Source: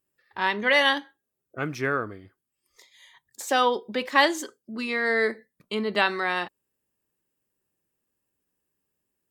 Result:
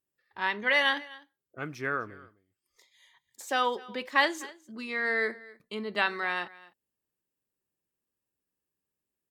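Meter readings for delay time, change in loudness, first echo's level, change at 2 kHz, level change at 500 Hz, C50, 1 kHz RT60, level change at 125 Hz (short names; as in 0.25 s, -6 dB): 0.253 s, -4.5 dB, -21.0 dB, -3.5 dB, -7.5 dB, none, none, -8.0 dB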